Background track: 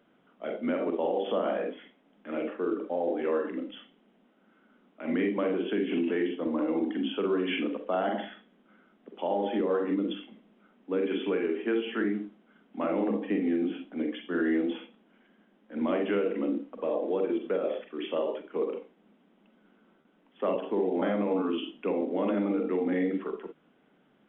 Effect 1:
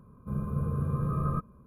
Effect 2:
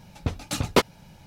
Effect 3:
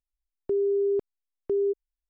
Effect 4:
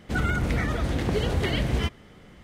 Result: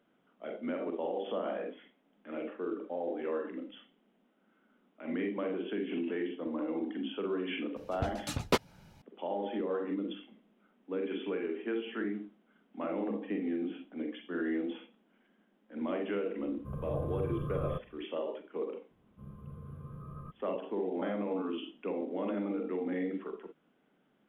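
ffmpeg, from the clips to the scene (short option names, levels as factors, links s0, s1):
-filter_complex "[1:a]asplit=2[s0][s1];[0:a]volume=0.473[s2];[2:a]highshelf=f=6100:g=-2.5[s3];[s0]aecho=1:1:1.9:0.53[s4];[s3]atrim=end=1.26,asetpts=PTS-STARTPTS,volume=0.398,afade=t=in:d=0.004:c=hsin,afade=t=out:st=1.256:d=0.004:c=hsin,adelay=7760[s5];[s4]atrim=end=1.66,asetpts=PTS-STARTPTS,volume=0.376,afade=t=in:d=0.004:c=hsin,afade=t=out:st=1.656:d=0.004:c=hsin,adelay=16380[s6];[s1]atrim=end=1.66,asetpts=PTS-STARTPTS,volume=0.15,afade=t=in:d=0.004:c=hsin,afade=t=out:st=1.656:d=0.004:c=hsin,adelay=18910[s7];[s2][s5][s6][s7]amix=inputs=4:normalize=0"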